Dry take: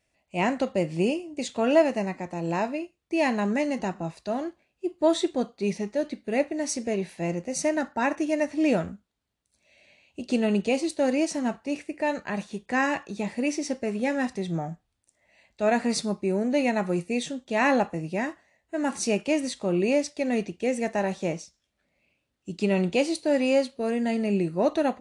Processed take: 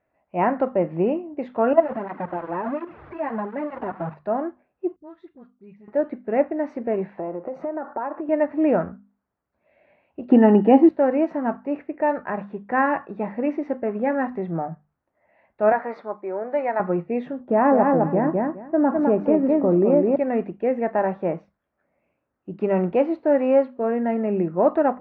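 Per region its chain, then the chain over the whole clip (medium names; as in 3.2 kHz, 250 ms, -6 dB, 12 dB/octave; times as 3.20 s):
1.73–4.14 s: jump at every zero crossing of -26 dBFS + level held to a coarse grid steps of 14 dB + cancelling through-zero flanger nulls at 1.4 Hz, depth 6.5 ms
4.96–5.88 s: amplifier tone stack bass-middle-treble 6-0-2 + phase dispersion highs, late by 43 ms, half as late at 1.3 kHz
7.17–8.29 s: high-order bell 640 Hz +9 dB 2.4 oct + compression 10:1, threshold -30 dBFS
10.31–10.89 s: treble shelf 6.5 kHz -11 dB + small resonant body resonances 290/820/1800/2900 Hz, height 13 dB, ringing for 20 ms
15.72–16.80 s: band-pass 540–5800 Hz + band-stop 2.7 kHz, Q 7.6
17.40–20.16 s: tilt shelf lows +9 dB, about 1.3 kHz + feedback delay 207 ms, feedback 16%, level -4.5 dB + compression 2.5:1, threshold -19 dBFS
whole clip: low-pass 1.4 kHz 24 dB/octave; tilt EQ +2.5 dB/octave; hum notches 50/100/150/200/250 Hz; trim +7.5 dB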